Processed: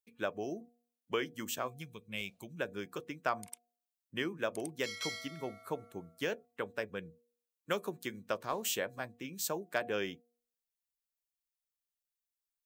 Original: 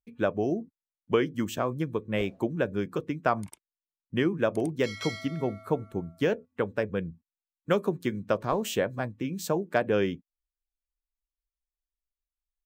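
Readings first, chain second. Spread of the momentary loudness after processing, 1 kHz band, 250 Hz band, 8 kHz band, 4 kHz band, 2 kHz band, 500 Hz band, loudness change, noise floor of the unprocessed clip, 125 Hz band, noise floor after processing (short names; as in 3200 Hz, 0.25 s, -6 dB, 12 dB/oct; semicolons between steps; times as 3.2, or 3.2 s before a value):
9 LU, -7.5 dB, -13.0 dB, +1.5 dB, -1.5 dB, -4.5 dB, -10.5 dB, -9.0 dB, under -85 dBFS, -15.5 dB, under -85 dBFS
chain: tilt +3 dB/oct; spectral gain 1.68–2.59, 230–2100 Hz -11 dB; de-hum 238.3 Hz, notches 3; gain -7 dB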